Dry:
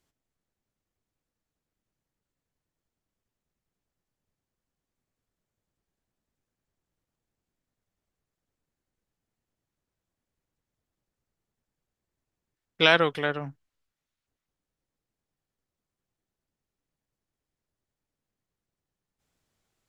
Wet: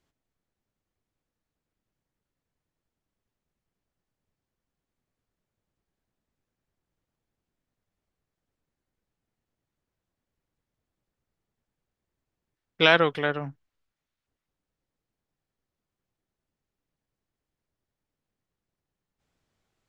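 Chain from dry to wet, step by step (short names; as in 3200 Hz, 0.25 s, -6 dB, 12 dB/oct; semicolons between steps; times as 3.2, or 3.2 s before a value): high shelf 7400 Hz -12 dB; gain +1.5 dB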